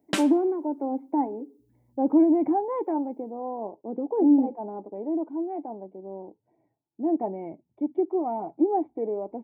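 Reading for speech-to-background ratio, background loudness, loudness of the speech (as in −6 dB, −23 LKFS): 5.5 dB, −32.0 LKFS, −26.5 LKFS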